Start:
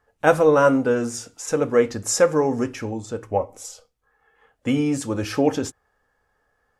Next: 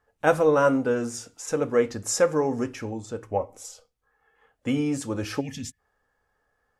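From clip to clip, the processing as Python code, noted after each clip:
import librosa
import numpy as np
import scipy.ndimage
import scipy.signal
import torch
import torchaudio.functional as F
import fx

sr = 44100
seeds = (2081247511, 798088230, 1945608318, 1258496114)

y = fx.spec_box(x, sr, start_s=5.4, length_s=0.39, low_hz=260.0, high_hz=1700.0, gain_db=-23)
y = F.gain(torch.from_numpy(y), -4.0).numpy()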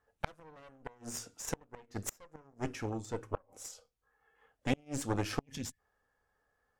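y = fx.cheby_harmonics(x, sr, harmonics=(6,), levels_db=(-9,), full_scale_db=-6.5)
y = fx.gate_flip(y, sr, shuts_db=-12.0, range_db=-33)
y = F.gain(torch.from_numpy(y), -5.5).numpy()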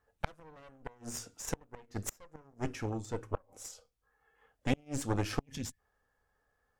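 y = fx.low_shelf(x, sr, hz=110.0, db=5.0)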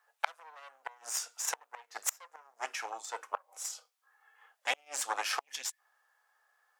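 y = scipy.signal.sosfilt(scipy.signal.butter(4, 760.0, 'highpass', fs=sr, output='sos'), x)
y = F.gain(torch.from_numpy(y), 7.5).numpy()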